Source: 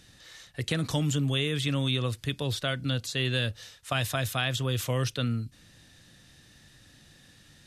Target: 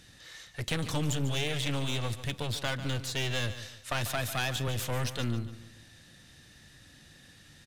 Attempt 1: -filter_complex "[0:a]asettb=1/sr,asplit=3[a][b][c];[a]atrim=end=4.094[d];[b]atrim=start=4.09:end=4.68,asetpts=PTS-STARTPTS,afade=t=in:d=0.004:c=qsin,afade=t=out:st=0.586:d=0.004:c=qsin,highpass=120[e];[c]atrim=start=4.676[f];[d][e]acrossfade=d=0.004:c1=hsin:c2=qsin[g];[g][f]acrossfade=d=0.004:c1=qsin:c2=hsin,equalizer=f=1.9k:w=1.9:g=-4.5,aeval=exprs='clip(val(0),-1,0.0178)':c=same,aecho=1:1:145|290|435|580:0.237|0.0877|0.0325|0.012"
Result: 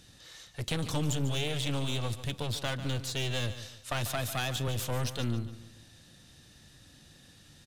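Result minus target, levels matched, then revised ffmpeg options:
2000 Hz band -2.5 dB
-filter_complex "[0:a]asettb=1/sr,asplit=3[a][b][c];[a]atrim=end=4.094[d];[b]atrim=start=4.09:end=4.68,asetpts=PTS-STARTPTS,afade=t=in:d=0.004:c=qsin,afade=t=out:st=0.586:d=0.004:c=qsin,highpass=120[e];[c]atrim=start=4.676[f];[d][e]acrossfade=d=0.004:c1=hsin:c2=qsin[g];[g][f]acrossfade=d=0.004:c1=qsin:c2=hsin,equalizer=f=1.9k:w=1.9:g=2,aeval=exprs='clip(val(0),-1,0.0178)':c=same,aecho=1:1:145|290|435|580:0.237|0.0877|0.0325|0.012"

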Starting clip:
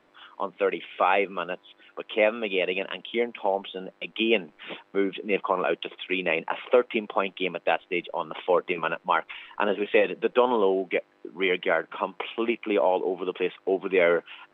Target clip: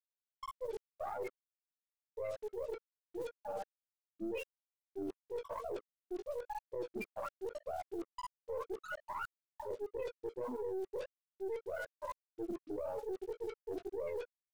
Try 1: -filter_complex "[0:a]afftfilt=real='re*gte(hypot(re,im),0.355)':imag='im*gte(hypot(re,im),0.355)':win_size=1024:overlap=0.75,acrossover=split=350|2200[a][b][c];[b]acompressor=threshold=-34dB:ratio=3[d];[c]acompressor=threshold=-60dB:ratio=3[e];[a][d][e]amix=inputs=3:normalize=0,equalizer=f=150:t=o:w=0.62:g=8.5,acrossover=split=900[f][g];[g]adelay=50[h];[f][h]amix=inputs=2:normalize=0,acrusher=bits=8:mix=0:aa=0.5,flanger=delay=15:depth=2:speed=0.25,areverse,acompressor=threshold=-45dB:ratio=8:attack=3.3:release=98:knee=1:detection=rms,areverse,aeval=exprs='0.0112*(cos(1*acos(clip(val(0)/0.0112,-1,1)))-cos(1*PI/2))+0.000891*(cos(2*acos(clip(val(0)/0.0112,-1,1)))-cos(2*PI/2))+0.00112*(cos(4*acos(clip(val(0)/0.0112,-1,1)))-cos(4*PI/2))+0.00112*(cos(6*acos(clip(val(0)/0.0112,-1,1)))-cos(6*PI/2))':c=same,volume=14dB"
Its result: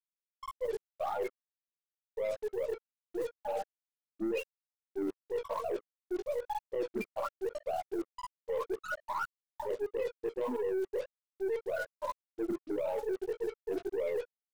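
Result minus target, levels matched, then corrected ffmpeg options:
compressor: peak gain reduction -6.5 dB
-filter_complex "[0:a]afftfilt=real='re*gte(hypot(re,im),0.355)':imag='im*gte(hypot(re,im),0.355)':win_size=1024:overlap=0.75,acrossover=split=350|2200[a][b][c];[b]acompressor=threshold=-34dB:ratio=3[d];[c]acompressor=threshold=-60dB:ratio=3[e];[a][d][e]amix=inputs=3:normalize=0,equalizer=f=150:t=o:w=0.62:g=8.5,acrossover=split=900[f][g];[g]adelay=50[h];[f][h]amix=inputs=2:normalize=0,acrusher=bits=8:mix=0:aa=0.5,flanger=delay=15:depth=2:speed=0.25,areverse,acompressor=threshold=-52.5dB:ratio=8:attack=3.3:release=98:knee=1:detection=rms,areverse,aeval=exprs='0.0112*(cos(1*acos(clip(val(0)/0.0112,-1,1)))-cos(1*PI/2))+0.000891*(cos(2*acos(clip(val(0)/0.0112,-1,1)))-cos(2*PI/2))+0.00112*(cos(4*acos(clip(val(0)/0.0112,-1,1)))-cos(4*PI/2))+0.00112*(cos(6*acos(clip(val(0)/0.0112,-1,1)))-cos(6*PI/2))':c=same,volume=14dB"

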